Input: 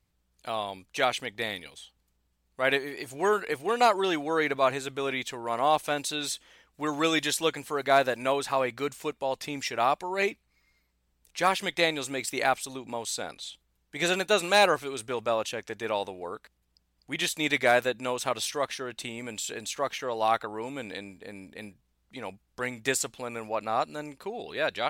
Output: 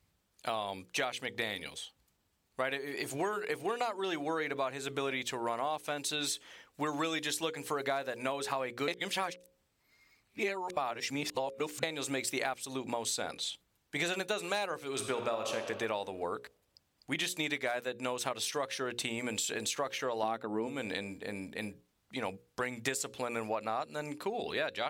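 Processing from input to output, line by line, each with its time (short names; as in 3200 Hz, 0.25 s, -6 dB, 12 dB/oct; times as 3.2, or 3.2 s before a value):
8.88–11.83 reverse
14.87–15.56 reverb throw, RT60 1.3 s, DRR 5 dB
20.23–20.67 bell 250 Hz +13.5 dB 2.1 oct
whole clip: notches 60/120/180/240/300/360/420/480/540 Hz; compressor 12:1, threshold -34 dBFS; HPF 54 Hz; gain +3.5 dB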